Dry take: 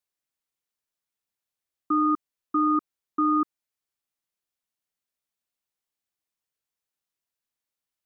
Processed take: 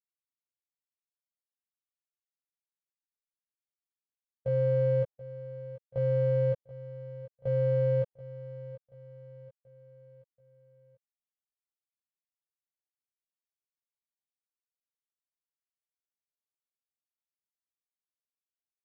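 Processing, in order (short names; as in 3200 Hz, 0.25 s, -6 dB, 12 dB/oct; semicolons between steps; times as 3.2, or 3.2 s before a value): Wiener smoothing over 15 samples; low shelf 500 Hz -4.5 dB; transient shaper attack -2 dB, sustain -6 dB; gate with hold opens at -27 dBFS; comb 7.1 ms, depth 89%; speed mistake 78 rpm record played at 33 rpm; bell 880 Hz +7 dB 1.6 oct; on a send: feedback echo 0.732 s, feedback 46%, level -15.5 dB; on the sum: gain -7 dB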